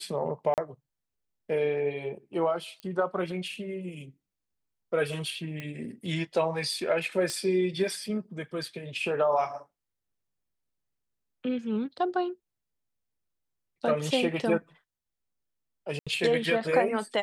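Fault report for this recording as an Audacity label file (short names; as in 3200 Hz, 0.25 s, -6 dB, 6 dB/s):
0.540000	0.580000	gap 38 ms
2.800000	2.800000	pop -27 dBFS
5.600000	5.600000	pop -23 dBFS
7.300000	7.300000	pop -18 dBFS
15.990000	16.070000	gap 76 ms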